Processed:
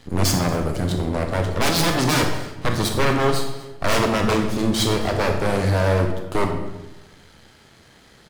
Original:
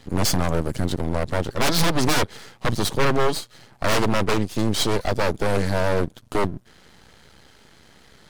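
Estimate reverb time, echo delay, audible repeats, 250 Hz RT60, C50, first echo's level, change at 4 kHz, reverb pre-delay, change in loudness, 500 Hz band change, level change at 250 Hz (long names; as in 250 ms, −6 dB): 1.0 s, 242 ms, 1, 1.2 s, 5.5 dB, −21.5 dB, +1.5 dB, 22 ms, +2.0 dB, +1.5 dB, +2.5 dB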